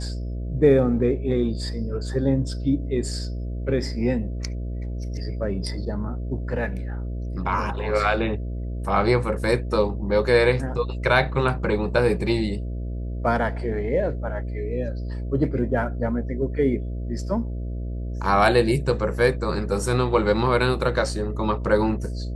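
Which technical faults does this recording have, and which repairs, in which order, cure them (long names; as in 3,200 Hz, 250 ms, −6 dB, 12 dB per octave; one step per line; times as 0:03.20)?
mains buzz 60 Hz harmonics 11 −29 dBFS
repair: hum removal 60 Hz, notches 11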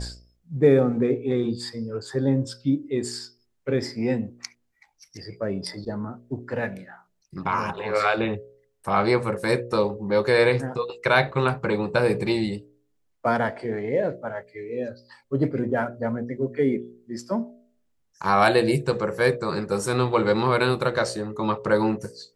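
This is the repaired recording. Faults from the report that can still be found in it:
none of them is left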